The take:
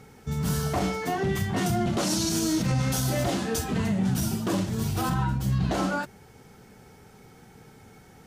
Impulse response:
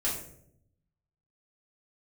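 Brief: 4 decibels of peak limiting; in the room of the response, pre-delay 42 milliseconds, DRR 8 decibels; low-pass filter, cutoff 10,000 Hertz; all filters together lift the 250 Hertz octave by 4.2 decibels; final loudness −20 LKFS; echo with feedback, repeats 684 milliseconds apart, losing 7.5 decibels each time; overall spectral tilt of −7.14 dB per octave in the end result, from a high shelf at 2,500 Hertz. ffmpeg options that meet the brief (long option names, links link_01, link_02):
-filter_complex "[0:a]lowpass=10000,equalizer=frequency=250:width_type=o:gain=6,highshelf=frequency=2500:gain=-9,alimiter=limit=-17.5dB:level=0:latency=1,aecho=1:1:684|1368|2052|2736|3420:0.422|0.177|0.0744|0.0312|0.0131,asplit=2[link_01][link_02];[1:a]atrim=start_sample=2205,adelay=42[link_03];[link_02][link_03]afir=irnorm=-1:irlink=0,volume=-14.5dB[link_04];[link_01][link_04]amix=inputs=2:normalize=0,volume=5.5dB"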